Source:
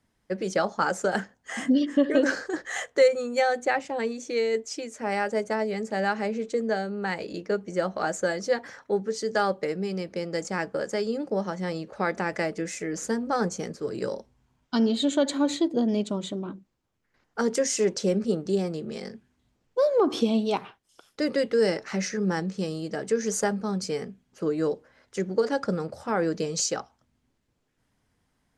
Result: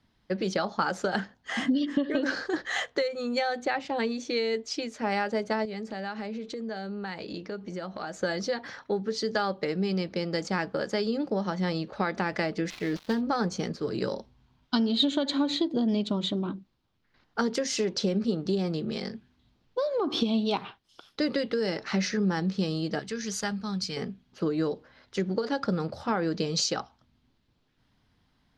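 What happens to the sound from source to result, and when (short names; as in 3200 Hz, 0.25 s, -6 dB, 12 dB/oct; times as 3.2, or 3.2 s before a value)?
5.65–8.21 compressor 3:1, threshold -37 dBFS
12.7–13.21 switching dead time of 0.095 ms
22.99–23.97 bell 460 Hz -12 dB 2.7 oct
whole clip: high shelf 10000 Hz -11.5 dB; compressor 10:1, threshold -25 dBFS; graphic EQ 500/2000/4000/8000 Hz -5/-3/+8/-11 dB; gain +4.5 dB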